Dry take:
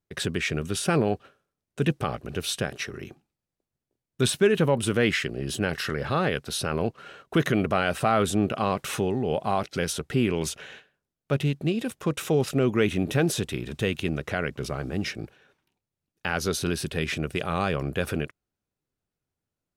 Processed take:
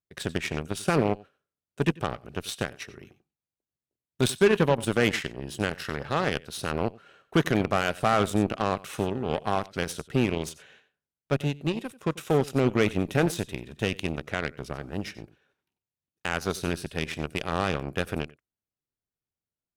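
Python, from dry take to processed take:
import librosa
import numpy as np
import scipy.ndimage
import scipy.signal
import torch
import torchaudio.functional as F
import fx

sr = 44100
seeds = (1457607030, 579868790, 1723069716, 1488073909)

y = x + 10.0 ** (-14.0 / 20.0) * np.pad(x, (int(92 * sr / 1000.0), 0))[:len(x)]
y = fx.cheby_harmonics(y, sr, harmonics=(7,), levels_db=(-20,), full_scale_db=-9.5)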